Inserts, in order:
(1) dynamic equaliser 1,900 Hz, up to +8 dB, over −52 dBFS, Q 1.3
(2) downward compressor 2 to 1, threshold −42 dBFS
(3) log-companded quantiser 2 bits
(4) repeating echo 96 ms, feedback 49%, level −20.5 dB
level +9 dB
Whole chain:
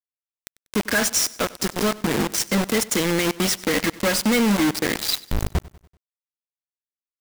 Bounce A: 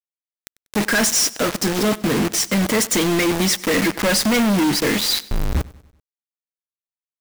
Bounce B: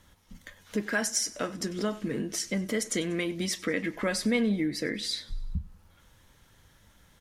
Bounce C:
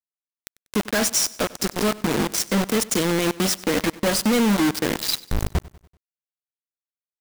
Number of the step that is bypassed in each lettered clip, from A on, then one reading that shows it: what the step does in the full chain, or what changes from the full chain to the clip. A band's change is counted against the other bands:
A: 2, average gain reduction 7.0 dB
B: 3, distortion level −4 dB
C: 1, 2 kHz band −3.0 dB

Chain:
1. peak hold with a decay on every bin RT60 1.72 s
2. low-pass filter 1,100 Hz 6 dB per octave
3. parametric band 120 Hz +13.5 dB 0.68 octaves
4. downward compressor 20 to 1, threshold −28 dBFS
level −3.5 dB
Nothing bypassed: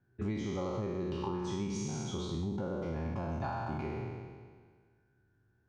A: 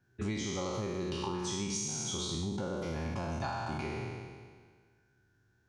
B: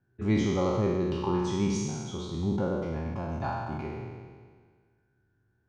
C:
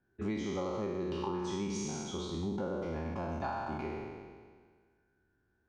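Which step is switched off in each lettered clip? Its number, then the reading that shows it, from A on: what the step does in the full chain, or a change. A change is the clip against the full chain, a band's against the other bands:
2, 8 kHz band +11.0 dB
4, average gain reduction 4.5 dB
3, 125 Hz band −5.5 dB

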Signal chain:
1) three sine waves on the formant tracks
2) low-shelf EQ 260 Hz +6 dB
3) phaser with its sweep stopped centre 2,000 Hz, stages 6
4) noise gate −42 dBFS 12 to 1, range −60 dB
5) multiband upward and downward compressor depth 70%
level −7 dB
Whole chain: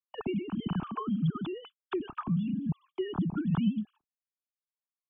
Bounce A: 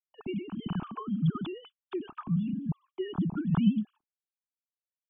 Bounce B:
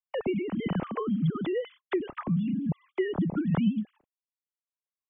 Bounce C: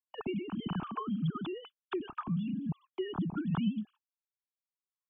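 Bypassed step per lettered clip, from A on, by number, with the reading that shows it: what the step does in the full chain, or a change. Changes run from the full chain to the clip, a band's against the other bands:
5, change in crest factor +4.0 dB
3, 500 Hz band +4.5 dB
2, 2 kHz band +2.5 dB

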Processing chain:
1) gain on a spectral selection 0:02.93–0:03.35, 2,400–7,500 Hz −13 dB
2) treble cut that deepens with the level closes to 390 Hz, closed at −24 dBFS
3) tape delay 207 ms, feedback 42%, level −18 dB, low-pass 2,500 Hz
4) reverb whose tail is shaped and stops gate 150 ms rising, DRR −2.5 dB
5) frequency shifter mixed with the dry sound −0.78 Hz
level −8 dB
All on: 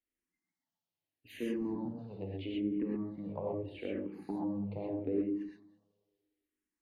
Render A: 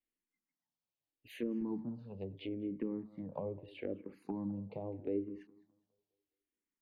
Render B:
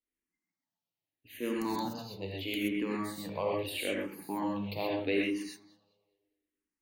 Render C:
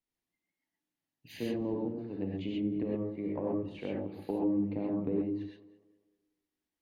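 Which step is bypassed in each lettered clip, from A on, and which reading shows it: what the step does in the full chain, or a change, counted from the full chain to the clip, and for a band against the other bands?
4, change in integrated loudness −3.5 LU
2, 2 kHz band +11.0 dB
5, 2 kHz band −2.0 dB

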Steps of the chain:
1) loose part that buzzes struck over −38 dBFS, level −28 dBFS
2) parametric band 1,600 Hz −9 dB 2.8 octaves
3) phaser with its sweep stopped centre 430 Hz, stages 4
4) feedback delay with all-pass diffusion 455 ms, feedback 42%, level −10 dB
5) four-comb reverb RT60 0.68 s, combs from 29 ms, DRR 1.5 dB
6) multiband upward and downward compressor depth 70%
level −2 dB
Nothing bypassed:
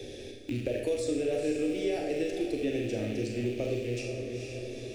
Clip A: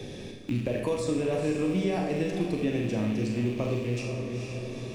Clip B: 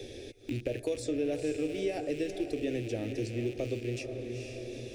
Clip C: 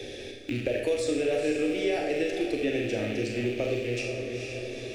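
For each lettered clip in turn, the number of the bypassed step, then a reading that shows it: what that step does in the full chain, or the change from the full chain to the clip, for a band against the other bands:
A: 3, 125 Hz band +5.5 dB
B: 5, change in integrated loudness −2.5 LU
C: 2, 2 kHz band +5.0 dB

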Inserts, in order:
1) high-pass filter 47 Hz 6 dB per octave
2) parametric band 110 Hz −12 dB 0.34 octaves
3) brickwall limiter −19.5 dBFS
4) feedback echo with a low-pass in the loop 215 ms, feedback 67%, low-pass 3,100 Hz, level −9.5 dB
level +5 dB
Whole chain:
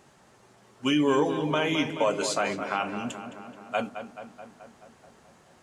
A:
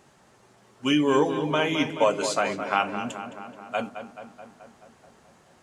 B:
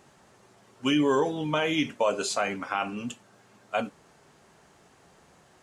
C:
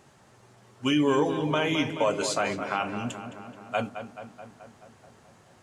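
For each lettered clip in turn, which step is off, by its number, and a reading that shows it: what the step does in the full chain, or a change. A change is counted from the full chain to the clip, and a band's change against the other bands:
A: 3, change in crest factor +3.0 dB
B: 4, echo-to-direct ratio −8.5 dB to none audible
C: 2, 125 Hz band +2.5 dB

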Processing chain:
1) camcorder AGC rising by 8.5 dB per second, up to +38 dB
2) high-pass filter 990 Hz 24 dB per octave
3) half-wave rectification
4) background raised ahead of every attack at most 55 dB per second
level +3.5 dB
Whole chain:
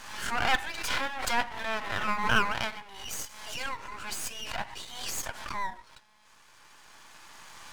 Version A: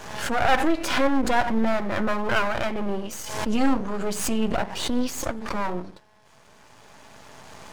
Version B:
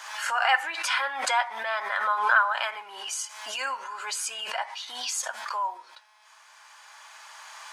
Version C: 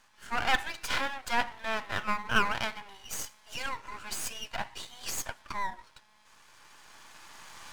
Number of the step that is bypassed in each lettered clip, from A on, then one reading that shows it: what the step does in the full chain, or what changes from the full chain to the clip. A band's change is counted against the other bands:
2, 250 Hz band +14.0 dB
3, distortion level 0 dB
4, change in momentary loudness spread +5 LU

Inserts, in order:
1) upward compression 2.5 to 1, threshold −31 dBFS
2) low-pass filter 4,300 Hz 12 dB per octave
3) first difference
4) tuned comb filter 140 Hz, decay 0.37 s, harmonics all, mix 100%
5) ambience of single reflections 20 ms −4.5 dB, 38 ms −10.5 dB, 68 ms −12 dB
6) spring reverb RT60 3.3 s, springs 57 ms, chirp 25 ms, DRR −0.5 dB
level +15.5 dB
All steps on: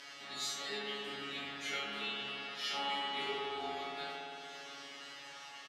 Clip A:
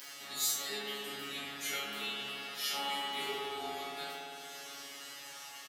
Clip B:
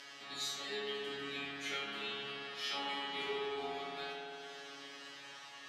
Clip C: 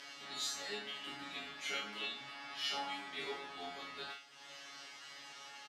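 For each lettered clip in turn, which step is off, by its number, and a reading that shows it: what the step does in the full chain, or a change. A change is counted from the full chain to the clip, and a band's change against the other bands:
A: 2, 8 kHz band +9.5 dB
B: 5, echo-to-direct ratio 3.5 dB to 0.5 dB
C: 6, 8 kHz band +4.5 dB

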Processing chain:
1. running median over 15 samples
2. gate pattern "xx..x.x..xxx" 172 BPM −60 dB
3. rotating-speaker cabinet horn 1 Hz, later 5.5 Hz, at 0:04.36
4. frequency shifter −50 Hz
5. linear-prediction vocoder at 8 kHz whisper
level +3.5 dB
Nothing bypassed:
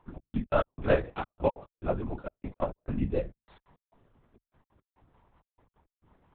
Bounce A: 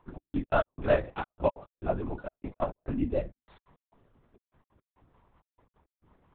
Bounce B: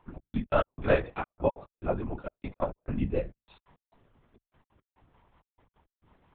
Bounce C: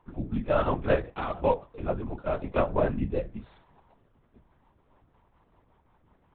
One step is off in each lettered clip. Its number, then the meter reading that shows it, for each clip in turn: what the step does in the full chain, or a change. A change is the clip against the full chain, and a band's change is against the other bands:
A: 4, 125 Hz band −2.5 dB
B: 1, 2 kHz band +2.0 dB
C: 2, 1 kHz band +2.0 dB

